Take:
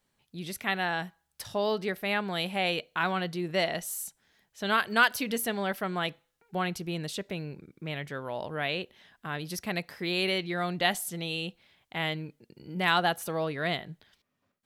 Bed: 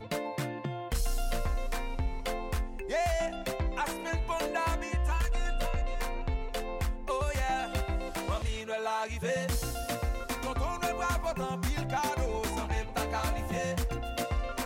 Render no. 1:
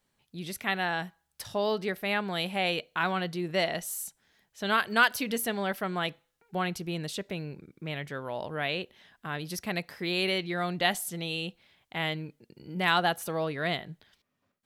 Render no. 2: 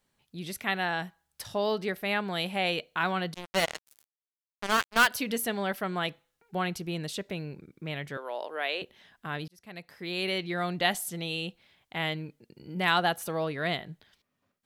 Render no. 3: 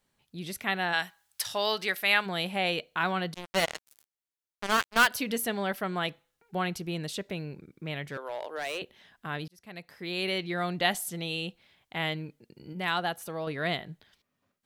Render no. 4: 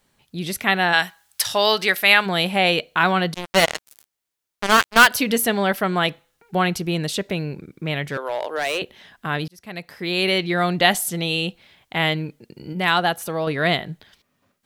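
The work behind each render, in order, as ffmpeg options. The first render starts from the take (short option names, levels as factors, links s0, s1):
-af anull
-filter_complex "[0:a]asettb=1/sr,asplit=3[s0][s1][s2];[s0]atrim=end=3.344[s3];[s1]atrim=start=3.34:end=5.07,asetpts=PTS-STARTPTS,afade=t=in:d=0.004:c=qsin,afade=t=out:st=1.726:d=0.004:c=qsin,acrusher=bits=3:mix=0:aa=0.5[s4];[s2]atrim=start=5.066[s5];[s3][s4]acrossfade=d=0.004:c1=hsin:c2=qsin[s6];[s6][s5]acrossfade=d=0.004:c1=qsin:c2=hsin,asettb=1/sr,asplit=3[s7][s8][s9];[s7]atrim=end=8.174[s10];[s8]atrim=start=8.17:end=8.82,asetpts=PTS-STARTPTS,afade=t=in:d=0.004:c=qsin,afade=t=out:st=0.646:d=0.004:c=qsin,highpass=f=360:w=0.5412,highpass=f=360:w=1.3066[s11];[s9]atrim=start=8.816[s12];[s10][s11]acrossfade=d=0.004:c1=hsin:c2=qsin[s13];[s13][s12]acrossfade=d=0.004:c1=qsin:c2=hsin,asplit=2[s14][s15];[s14]atrim=end=9.48,asetpts=PTS-STARTPTS,afade=t=out:st=9.476:d=0.004:c=hsin[s16];[s15]atrim=start=9.48,asetpts=PTS-STARTPTS,afade=t=in:d=1.03[s17];[s16][s17]concat=n=2:v=0:a=1"
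-filter_complex "[0:a]asplit=3[s0][s1][s2];[s0]afade=t=out:st=0.92:d=0.02[s3];[s1]tiltshelf=f=720:g=-9.5,afade=t=in:st=0.92:d=0.02,afade=t=out:st=2.25:d=0.02[s4];[s2]afade=t=in:st=2.25:d=0.02[s5];[s3][s4][s5]amix=inputs=3:normalize=0,asplit=3[s6][s7][s8];[s6]afade=t=out:st=8.03:d=0.02[s9];[s7]asoftclip=type=hard:threshold=0.0355,afade=t=in:st=8.03:d=0.02,afade=t=out:st=8.78:d=0.02[s10];[s8]afade=t=in:st=8.78:d=0.02[s11];[s9][s10][s11]amix=inputs=3:normalize=0,asplit=3[s12][s13][s14];[s12]atrim=end=12.732[s15];[s13]atrim=start=12.728:end=13.472,asetpts=PTS-STARTPTS,volume=0.596[s16];[s14]atrim=start=13.468[s17];[s15][s16]acrossfade=d=0.004:c1=hsin:c2=hsin[s18];[s18][s17]acrossfade=d=0.004:c1=hsin:c2=hsin"
-af "volume=3.35,alimiter=limit=0.891:level=0:latency=1"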